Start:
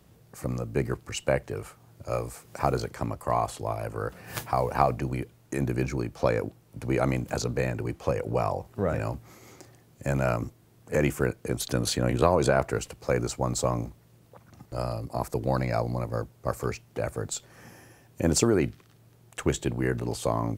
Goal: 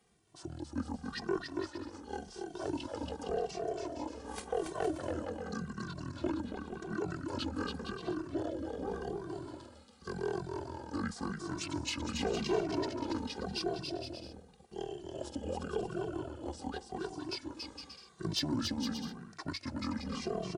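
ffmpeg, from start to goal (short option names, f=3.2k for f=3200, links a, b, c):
-filter_complex "[0:a]highpass=f=400:p=1,asetrate=28595,aresample=44100,atempo=1.54221,asoftclip=type=tanh:threshold=-16.5dB,aecho=1:1:280|462|580.3|657.2|707.2:0.631|0.398|0.251|0.158|0.1,asplit=2[a][b];[b]adelay=2.1,afreqshift=-0.89[c];[a][c]amix=inputs=2:normalize=1,volume=-4dB"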